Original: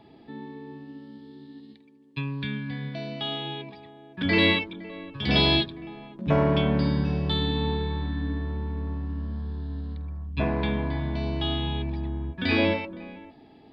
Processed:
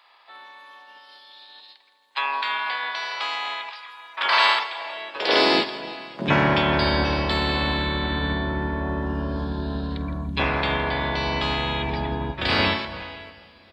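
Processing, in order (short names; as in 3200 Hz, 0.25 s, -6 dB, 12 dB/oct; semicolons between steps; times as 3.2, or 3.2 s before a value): spectral limiter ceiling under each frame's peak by 25 dB; spectral noise reduction 11 dB; in parallel at -1 dB: compressor, threshold -38 dBFS, peak gain reduction 19 dB; on the sum: high-pass sweep 1000 Hz -> 62 Hz, 4.54–7.08; harmoniser -7 st -17 dB, -3 st -13 dB; on a send: feedback echo 0.165 s, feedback 50%, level -16 dB; on the sum: two-slope reverb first 0.37 s, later 4.5 s, from -18 dB, DRR 13 dB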